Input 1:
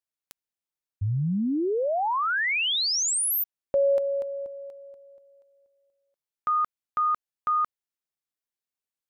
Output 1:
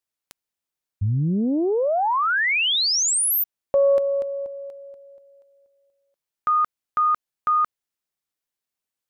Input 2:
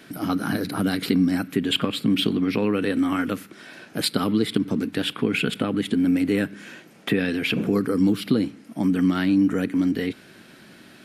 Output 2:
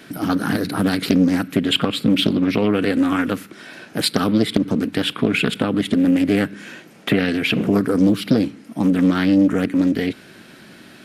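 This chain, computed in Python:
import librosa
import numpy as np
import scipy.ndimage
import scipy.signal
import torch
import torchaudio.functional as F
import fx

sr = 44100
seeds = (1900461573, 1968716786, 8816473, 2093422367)

y = fx.doppler_dist(x, sr, depth_ms=0.41)
y = F.gain(torch.from_numpy(y), 4.5).numpy()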